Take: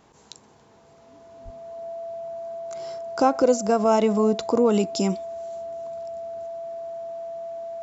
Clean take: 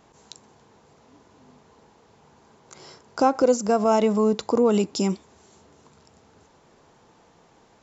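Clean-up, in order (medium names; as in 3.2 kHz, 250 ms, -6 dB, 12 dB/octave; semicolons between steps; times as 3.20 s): band-stop 670 Hz, Q 30; de-plosive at 1.44 s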